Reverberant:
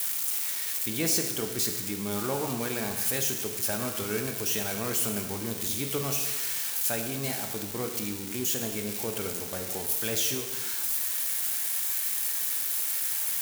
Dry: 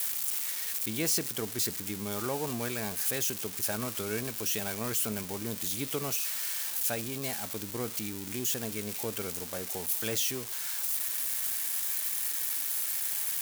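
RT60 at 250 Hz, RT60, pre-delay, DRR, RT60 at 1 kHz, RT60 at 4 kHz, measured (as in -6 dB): 1.3 s, 1.2 s, 16 ms, 4.5 dB, 1.2 s, 1.2 s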